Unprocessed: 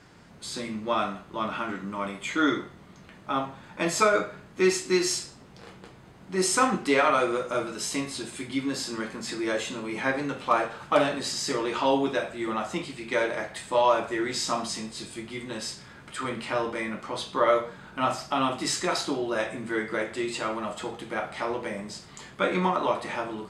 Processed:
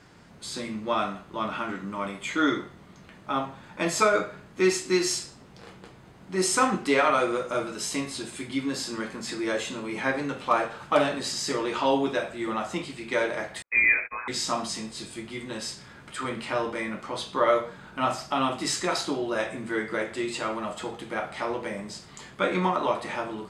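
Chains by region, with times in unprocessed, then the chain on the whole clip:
0:13.62–0:14.28: noise gate −36 dBFS, range −43 dB + linear-phase brick-wall high-pass 440 Hz + voice inversion scrambler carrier 3,000 Hz
whole clip: no processing

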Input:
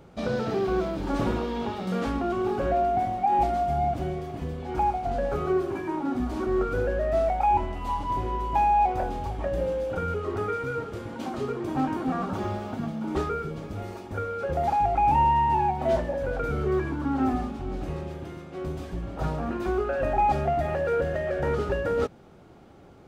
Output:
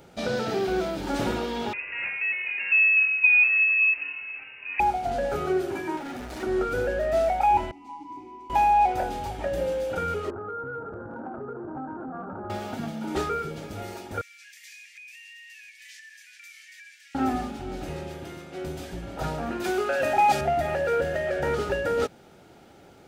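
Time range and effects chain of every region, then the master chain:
0:01.73–0:04.80: Chebyshev high-pass filter 670 Hz, order 4 + voice inversion scrambler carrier 3,300 Hz
0:05.97–0:06.43: comb filter 1.7 ms, depth 38% + gain into a clipping stage and back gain 33 dB
0:07.71–0:08.50: formant filter u + high shelf with overshoot 4,200 Hz +9 dB, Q 1.5
0:10.30–0:12.50: Butterworth low-pass 1,600 Hz 96 dB per octave + downward compressor, threshold −32 dBFS
0:14.21–0:17.15: Chebyshev high-pass with heavy ripple 1,700 Hz, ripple 6 dB + downward compressor, threshold −48 dBFS
0:19.64–0:20.41: high-pass filter 120 Hz + high-shelf EQ 2,200 Hz +8.5 dB
whole clip: spectral tilt +2 dB per octave; notch filter 1,100 Hz, Q 6.1; level +2.5 dB

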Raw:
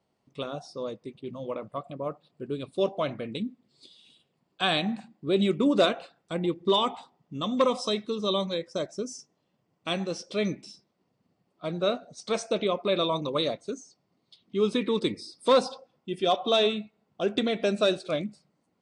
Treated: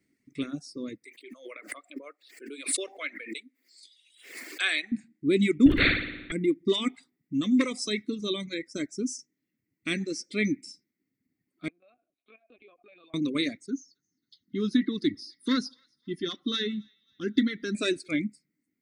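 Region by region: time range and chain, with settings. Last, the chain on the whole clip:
0:01.04–0:04.92: high-pass filter 510 Hz 24 dB per octave + background raised ahead of every attack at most 68 dB per second
0:05.66–0:06.32: linear-prediction vocoder at 8 kHz whisper + flutter between parallel walls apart 9.8 metres, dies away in 0.77 s + every bin compressed towards the loudest bin 2 to 1
0:11.68–0:13.14: linear-prediction vocoder at 8 kHz pitch kept + downward compressor 3 to 1, threshold −33 dBFS + formant filter a
0:13.66–0:17.75: phaser with its sweep stopped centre 2,400 Hz, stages 6 + delay with a high-pass on its return 270 ms, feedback 47%, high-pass 1,500 Hz, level −19.5 dB
whole clip: drawn EQ curve 190 Hz 0 dB, 280 Hz +12 dB, 540 Hz −12 dB, 900 Hz −21 dB, 2,100 Hz +13 dB, 2,900 Hz −5 dB, 7,700 Hz +7 dB; reverb reduction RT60 1.6 s

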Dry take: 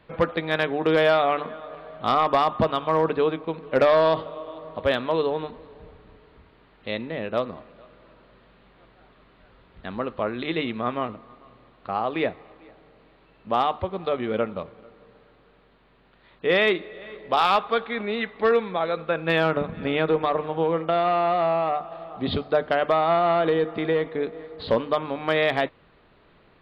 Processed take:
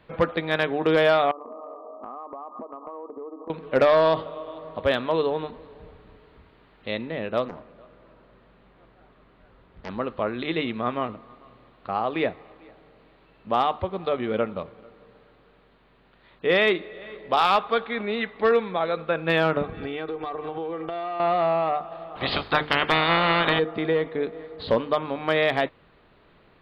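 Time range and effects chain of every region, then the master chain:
0:01.31–0:03.50: linear-phase brick-wall band-pass 220–1,300 Hz + downward compressor 10 to 1, threshold −34 dBFS
0:07.48–0:09.89: high-shelf EQ 2,300 Hz −7.5 dB + highs frequency-modulated by the lows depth 0.67 ms
0:19.63–0:21.20: comb filter 2.6 ms, depth 57% + downward compressor 10 to 1, threshold −27 dBFS
0:22.15–0:23.58: ceiling on every frequency bin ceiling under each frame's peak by 24 dB + mains-hum notches 50/100/150/200/250/300/350/400/450 Hz
whole clip: no processing

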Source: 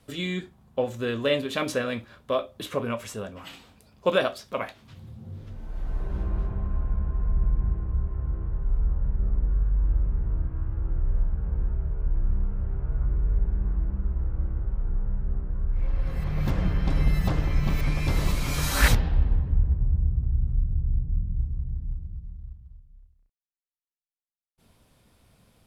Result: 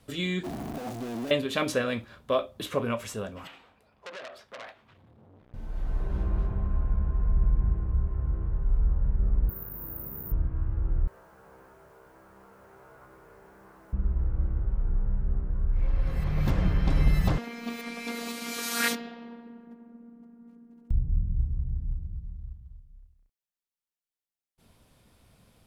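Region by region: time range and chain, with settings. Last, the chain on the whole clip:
0:00.43–0:01.31: sign of each sample alone + downward expander −22 dBFS + hollow resonant body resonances 280/680 Hz, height 15 dB, ringing for 25 ms
0:03.47–0:05.54: three-way crossover with the lows and the highs turned down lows −12 dB, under 400 Hz, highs −16 dB, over 2,800 Hz + downward compressor 8 to 1, threshold −32 dBFS + saturating transformer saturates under 3,700 Hz
0:09.49–0:10.32: high-pass filter 200 Hz + high-shelf EQ 5,500 Hz +9.5 dB + bad sample-rate conversion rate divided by 3×, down none, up zero stuff
0:11.07–0:13.93: high-pass filter 580 Hz + bit-depth reduction 12 bits, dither triangular
0:17.38–0:20.91: linear-phase brick-wall high-pass 170 Hz + dynamic equaliser 950 Hz, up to −6 dB, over −49 dBFS, Q 4.3 + phases set to zero 234 Hz
whole clip: no processing

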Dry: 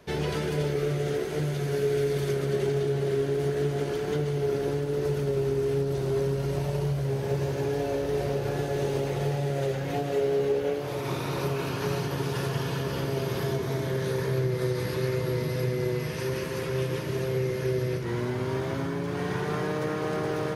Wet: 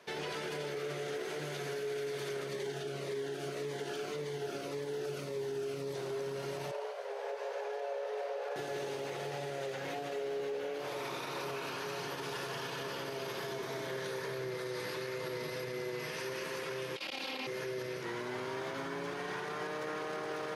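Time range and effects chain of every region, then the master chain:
0:02.48–0:05.96: mains-hum notches 60/120/180/240/300/360/420/480/540 Hz + phaser whose notches keep moving one way falling 1.8 Hz
0:06.71–0:08.56: Butterworth high-pass 450 Hz 72 dB per octave + spectral tilt −3.5 dB per octave
0:16.96–0:17.47: lower of the sound and its delayed copy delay 3.7 ms + flat-topped bell 3,400 Hz +11 dB 1.3 octaves + saturating transformer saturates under 330 Hz
whole clip: meter weighting curve A; brickwall limiter −29 dBFS; level −1.5 dB

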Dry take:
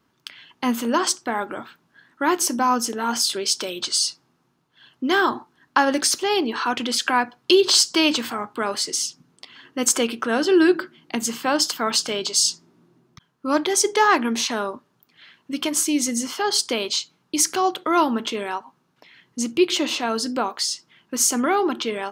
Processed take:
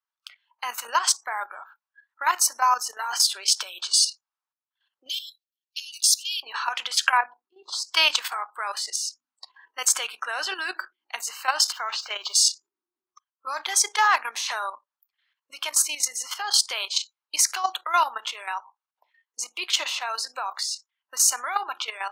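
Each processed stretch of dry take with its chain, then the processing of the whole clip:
0:05.09–0:06.43: Butterworth high-pass 2,700 Hz 48 dB per octave + high-shelf EQ 6,600 Hz +3 dB
0:07.17–0:07.94: spectral tilt −3 dB per octave + mains-hum notches 60/120/180/240/300/360 Hz + volume swells 696 ms
0:11.72–0:12.34: spike at every zero crossing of −24.5 dBFS + high-frequency loss of the air 190 metres
whole clip: high-pass filter 810 Hz 24 dB per octave; noise reduction from a noise print of the clip's start 25 dB; output level in coarse steps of 11 dB; level +4 dB

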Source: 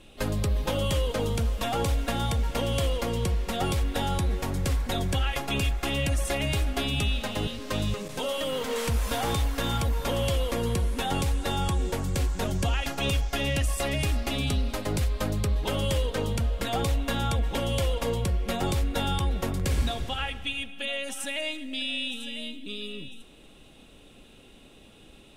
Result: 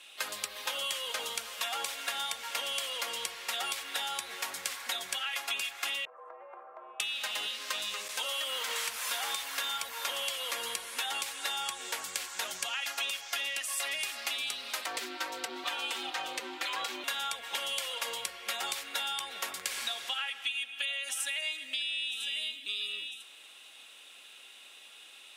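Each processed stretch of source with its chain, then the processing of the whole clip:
0:06.05–0:07.00: elliptic band-pass filter 420–1,200 Hz, stop band 60 dB + frequency shifter −57 Hz + downward compressor, threshold −37 dBFS
0:14.86–0:17.04: parametric band 11,000 Hz −10 dB 1.2 octaves + comb filter 4.7 ms, depth 93% + ring modulation 310 Hz
whole clip: high-pass filter 1,400 Hz 12 dB per octave; downward compressor, threshold −37 dBFS; level +6 dB

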